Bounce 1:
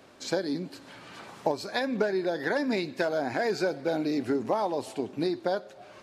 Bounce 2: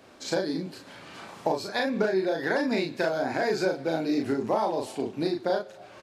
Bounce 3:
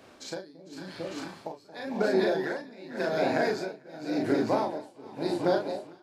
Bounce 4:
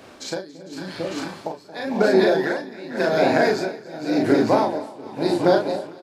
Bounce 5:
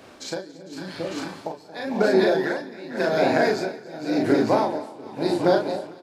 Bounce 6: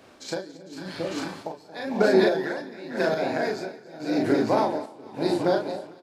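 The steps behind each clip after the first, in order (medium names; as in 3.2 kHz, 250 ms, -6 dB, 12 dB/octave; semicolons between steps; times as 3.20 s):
doubling 37 ms -3 dB
echo whose repeats swap between lows and highs 225 ms, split 820 Hz, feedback 77%, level -4.5 dB; tremolo 0.91 Hz, depth 94%
delay 280 ms -20 dB; trim +8.5 dB
reverberation RT60 0.35 s, pre-delay 136 ms, DRR 22 dB; trim -2 dB
random-step tremolo 3.5 Hz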